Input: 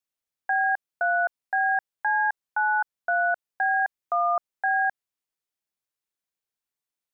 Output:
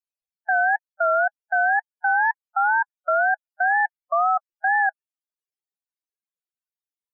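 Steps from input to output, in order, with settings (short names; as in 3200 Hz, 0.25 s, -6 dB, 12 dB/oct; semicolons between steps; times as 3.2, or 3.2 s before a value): loudest bins only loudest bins 16; wow and flutter 130 cents; gain +3.5 dB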